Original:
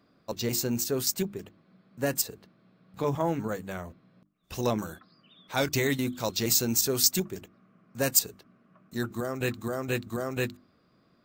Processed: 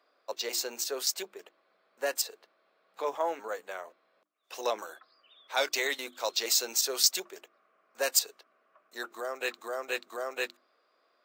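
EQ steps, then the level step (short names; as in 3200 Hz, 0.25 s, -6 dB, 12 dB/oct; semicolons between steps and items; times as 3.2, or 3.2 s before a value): HPF 480 Hz 24 dB/oct; dynamic EQ 4200 Hz, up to +4 dB, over -41 dBFS, Q 1; high shelf 7400 Hz -7.5 dB; 0.0 dB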